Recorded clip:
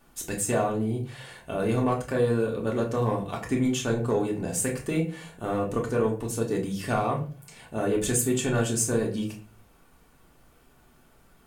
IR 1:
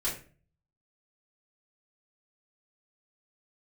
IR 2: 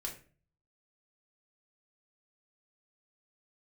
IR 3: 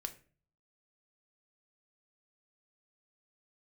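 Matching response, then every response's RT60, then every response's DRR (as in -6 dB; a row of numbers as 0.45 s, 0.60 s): 2; 0.40 s, 0.40 s, 0.40 s; -9.5 dB, -1.5 dB, 6.5 dB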